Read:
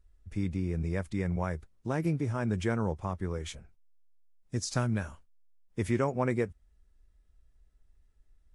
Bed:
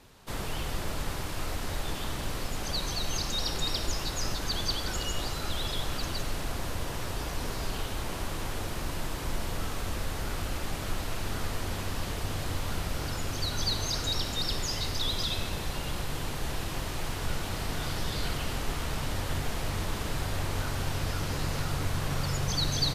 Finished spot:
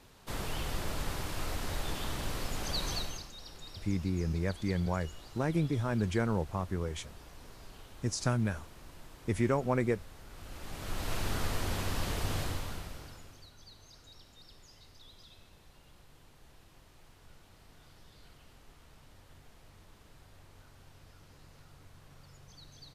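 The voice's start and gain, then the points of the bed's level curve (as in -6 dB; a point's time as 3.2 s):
3.50 s, -0.5 dB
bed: 2.97 s -2.5 dB
3.32 s -18 dB
10.28 s -18 dB
11.13 s -0.5 dB
12.39 s -0.5 dB
13.55 s -25.5 dB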